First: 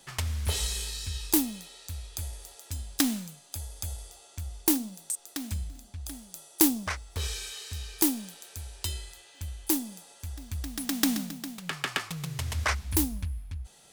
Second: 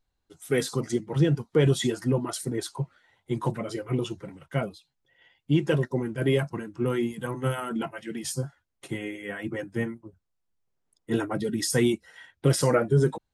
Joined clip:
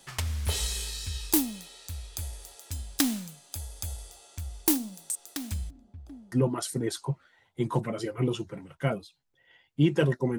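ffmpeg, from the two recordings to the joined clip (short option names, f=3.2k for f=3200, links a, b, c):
-filter_complex "[0:a]asplit=3[a][b][c];[a]afade=t=out:st=5.69:d=0.02[d];[b]bandpass=f=220:t=q:w=0.67:csg=0,afade=t=in:st=5.69:d=0.02,afade=t=out:st=6.32:d=0.02[e];[c]afade=t=in:st=6.32:d=0.02[f];[d][e][f]amix=inputs=3:normalize=0,apad=whole_dur=10.38,atrim=end=10.38,atrim=end=6.322[g];[1:a]atrim=start=2.028:end=6.09[h];[g][h]acrossfade=d=0.004:c1=hsin:c2=hsin"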